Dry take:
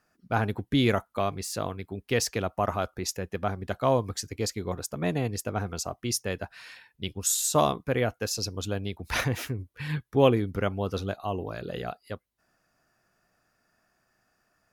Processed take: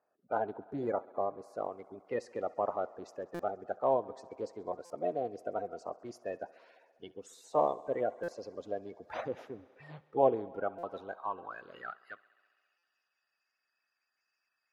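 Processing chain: coarse spectral quantiser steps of 30 dB; 0.55–1.58 s: peaking EQ 3.1 kHz -12 dB 1 oct; thinning echo 67 ms, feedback 85%, high-pass 150 Hz, level -23 dB; band-pass sweep 620 Hz -> 3.1 kHz, 10.48–13.02 s; buffer glitch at 3.34/4.85/8.23/10.78/12.78 s, samples 256, times 8

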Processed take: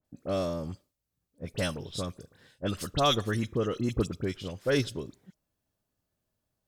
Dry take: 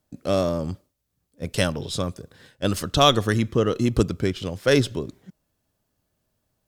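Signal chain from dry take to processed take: phase dispersion highs, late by 49 ms, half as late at 2.3 kHz; trim -8 dB

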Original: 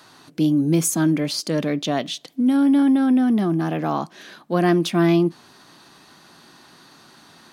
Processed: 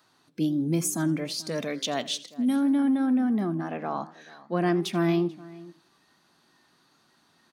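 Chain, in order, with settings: 3.58–4.79 s: Bessel low-pass 9 kHz, order 2; spectral noise reduction 9 dB; 1.51–2.56 s: treble shelf 3.2 kHz +9.5 dB; echo from a far wall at 75 m, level -20 dB; modulated delay 83 ms, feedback 31%, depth 173 cents, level -18.5 dB; trim -6.5 dB

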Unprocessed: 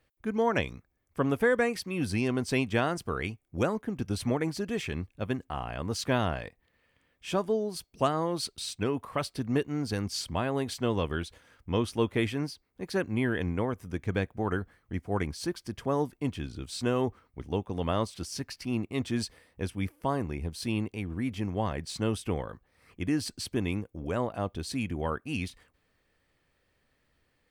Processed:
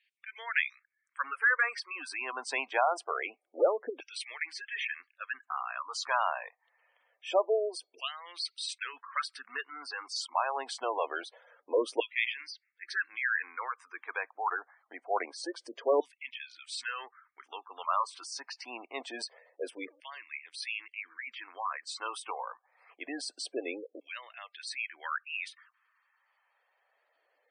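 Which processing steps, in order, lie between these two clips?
LFO high-pass saw down 0.25 Hz 470–2500 Hz; elliptic band-pass 270–9200 Hz, stop band 40 dB; spectral gate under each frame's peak -15 dB strong

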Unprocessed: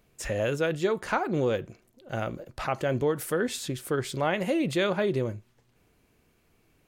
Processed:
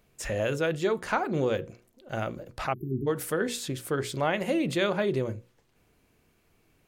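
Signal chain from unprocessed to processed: hum notches 60/120/180/240/300/360/420/480/540 Hz; spectral selection erased 2.73–3.07 s, 410–11000 Hz

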